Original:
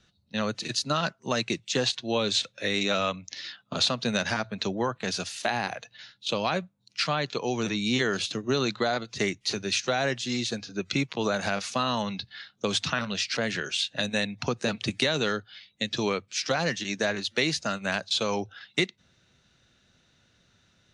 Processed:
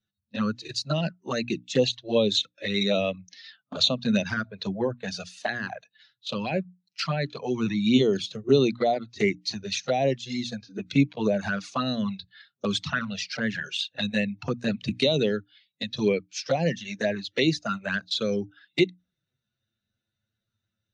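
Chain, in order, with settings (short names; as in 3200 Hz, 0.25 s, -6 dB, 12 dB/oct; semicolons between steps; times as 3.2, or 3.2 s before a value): envelope flanger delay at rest 9.5 ms, full sweep at -21.5 dBFS; notches 60/120/180/240/300 Hz; spectral expander 1.5:1; gain +5 dB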